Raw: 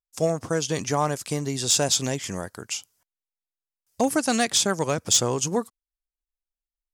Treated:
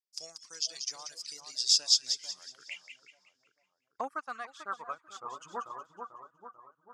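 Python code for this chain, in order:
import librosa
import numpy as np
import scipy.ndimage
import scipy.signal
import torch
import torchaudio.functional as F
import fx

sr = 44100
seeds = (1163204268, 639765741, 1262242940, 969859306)

y = fx.filter_sweep_bandpass(x, sr, from_hz=5000.0, to_hz=1200.0, start_s=2.34, end_s=2.97, q=6.2)
y = fx.echo_split(y, sr, split_hz=1400.0, low_ms=442, high_ms=185, feedback_pct=52, wet_db=-5.5)
y = fx.dereverb_blind(y, sr, rt60_s=1.9)
y = fx.upward_expand(y, sr, threshold_db=-47.0, expansion=1.5, at=(4.07, 5.4), fade=0.02)
y = y * 10.0 ** (5.0 / 20.0)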